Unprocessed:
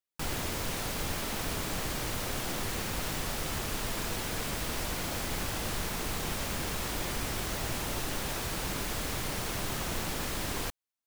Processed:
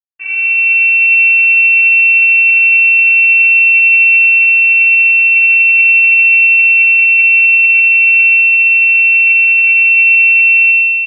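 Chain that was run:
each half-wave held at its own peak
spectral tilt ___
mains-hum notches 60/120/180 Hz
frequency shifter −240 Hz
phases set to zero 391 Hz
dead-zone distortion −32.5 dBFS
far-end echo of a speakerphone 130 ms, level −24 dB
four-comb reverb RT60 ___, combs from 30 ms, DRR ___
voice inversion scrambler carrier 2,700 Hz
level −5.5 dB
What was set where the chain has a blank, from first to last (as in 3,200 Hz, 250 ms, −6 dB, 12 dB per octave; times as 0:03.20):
−4.5 dB per octave, 2.4 s, 0 dB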